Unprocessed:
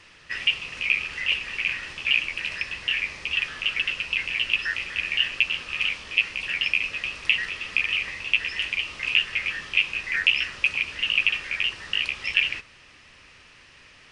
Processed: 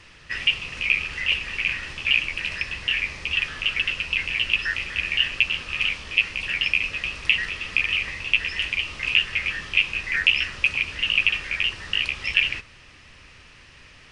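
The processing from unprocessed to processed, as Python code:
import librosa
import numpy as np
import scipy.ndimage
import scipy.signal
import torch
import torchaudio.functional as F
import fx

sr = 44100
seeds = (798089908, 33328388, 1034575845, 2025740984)

y = fx.low_shelf(x, sr, hz=150.0, db=9.0)
y = y * librosa.db_to_amplitude(1.5)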